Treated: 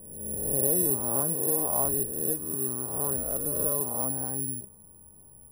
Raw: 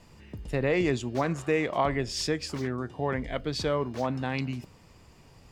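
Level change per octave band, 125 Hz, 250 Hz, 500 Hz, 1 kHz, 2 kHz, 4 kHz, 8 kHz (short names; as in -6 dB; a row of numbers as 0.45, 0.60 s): -5.5 dB, -5.0 dB, -4.5 dB, -6.0 dB, under -20 dB, under -40 dB, +17.0 dB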